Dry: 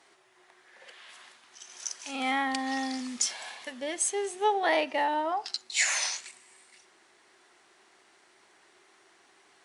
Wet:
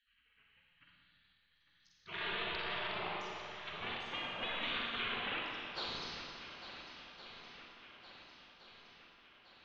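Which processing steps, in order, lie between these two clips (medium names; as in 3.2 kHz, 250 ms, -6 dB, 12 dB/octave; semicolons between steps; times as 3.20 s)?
local Wiener filter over 25 samples; steep low-pass 3.2 kHz 48 dB/octave; spectral gate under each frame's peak -30 dB weak; compression, threshold -56 dBFS, peak gain reduction 11 dB; on a send: shuffle delay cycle 1416 ms, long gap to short 1.5:1, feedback 50%, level -12 dB; on the sum: Schroeder reverb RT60 2.2 s, DRR -2 dB; trim +17 dB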